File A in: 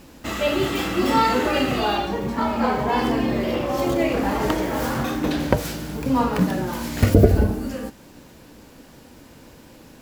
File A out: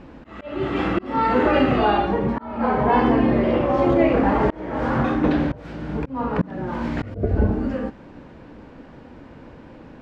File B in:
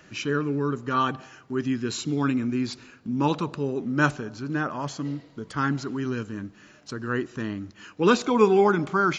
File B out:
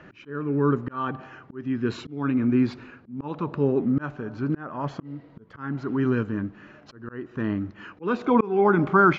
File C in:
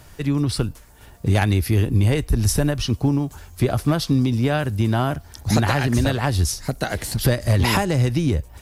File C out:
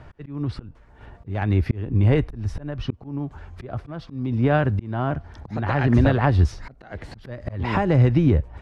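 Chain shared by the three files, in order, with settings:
low-pass filter 1,900 Hz 12 dB per octave
volume swells 454 ms
normalise the peak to −6 dBFS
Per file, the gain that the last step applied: +4.0, +6.0, +3.0 decibels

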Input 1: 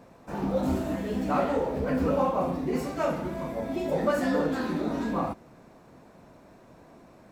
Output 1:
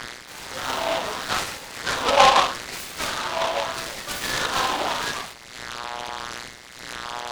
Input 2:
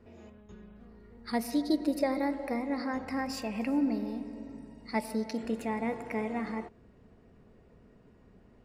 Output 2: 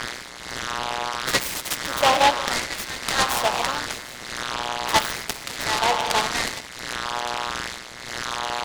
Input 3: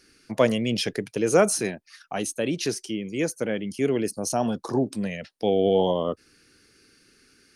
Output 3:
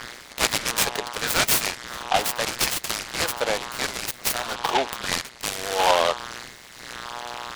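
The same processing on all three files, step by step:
hum with harmonics 120 Hz, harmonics 18, −40 dBFS −4 dB per octave
auto-filter high-pass sine 0.79 Hz 800–2,800 Hz
short delay modulated by noise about 2,100 Hz, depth 0.099 ms
loudness normalisation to −24 LKFS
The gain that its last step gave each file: +8.5, +13.5, +6.5 decibels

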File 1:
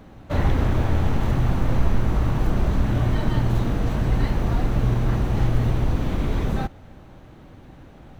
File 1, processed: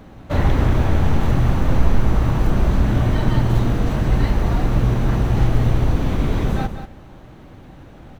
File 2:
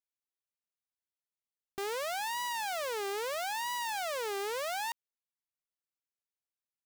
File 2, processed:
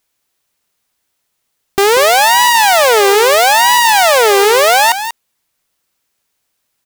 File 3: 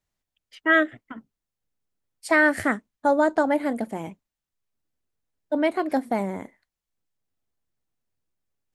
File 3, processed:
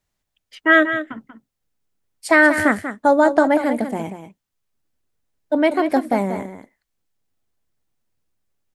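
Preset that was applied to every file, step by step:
single-tap delay 188 ms −10 dB
normalise the peak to −2 dBFS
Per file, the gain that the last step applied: +3.5, +26.0, +5.5 decibels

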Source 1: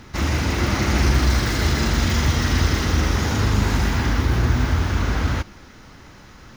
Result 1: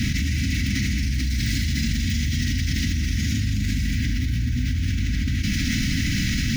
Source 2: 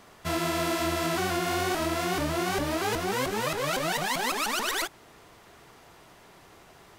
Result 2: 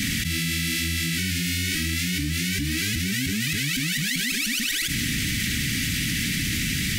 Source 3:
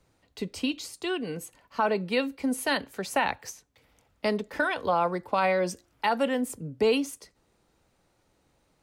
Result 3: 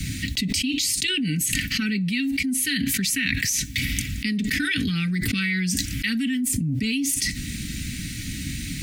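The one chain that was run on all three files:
in parallel at −11 dB: soft clipping −17 dBFS
on the sum: elliptic band-stop filter 270–2,000 Hz, stop band 50 dB
notch comb filter 350 Hz
envelope flattener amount 100%
loudness normalisation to −24 LKFS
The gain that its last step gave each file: −8.0, +2.5, −0.5 decibels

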